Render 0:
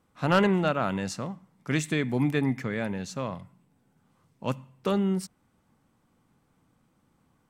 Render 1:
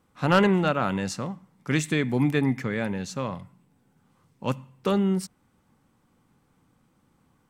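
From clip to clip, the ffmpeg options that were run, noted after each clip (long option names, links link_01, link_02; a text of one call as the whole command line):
ffmpeg -i in.wav -af "bandreject=frequency=650:width=12,volume=2.5dB" out.wav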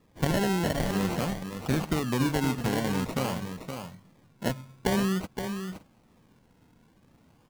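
ffmpeg -i in.wav -filter_complex "[0:a]acompressor=threshold=-28dB:ratio=4,acrusher=samples=29:mix=1:aa=0.000001:lfo=1:lforange=17.4:lforate=0.49,asplit=2[link_01][link_02];[link_02]aecho=0:1:519|568:0.422|0.1[link_03];[link_01][link_03]amix=inputs=2:normalize=0,volume=3.5dB" out.wav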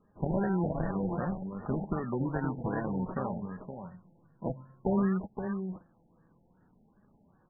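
ffmpeg -i in.wav -af "lowpass=frequency=3000:width_type=q:width=7.3,flanger=delay=4.8:depth=1.3:regen=51:speed=0.57:shape=sinusoidal,afftfilt=real='re*lt(b*sr/1024,890*pow(1900/890,0.5+0.5*sin(2*PI*2.6*pts/sr)))':imag='im*lt(b*sr/1024,890*pow(1900/890,0.5+0.5*sin(2*PI*2.6*pts/sr)))':win_size=1024:overlap=0.75" out.wav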